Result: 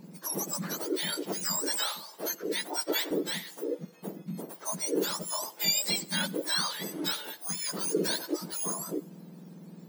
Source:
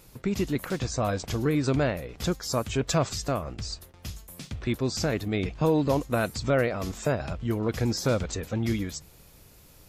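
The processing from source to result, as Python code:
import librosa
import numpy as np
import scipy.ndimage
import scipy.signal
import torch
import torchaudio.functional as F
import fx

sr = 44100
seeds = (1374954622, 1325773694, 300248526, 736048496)

y = fx.octave_mirror(x, sr, pivot_hz=1500.0)
y = fx.highpass(y, sr, hz=430.0, slope=12, at=(1.82, 3.11))
y = fx.echo_feedback(y, sr, ms=87, feedback_pct=55, wet_db=-24.0)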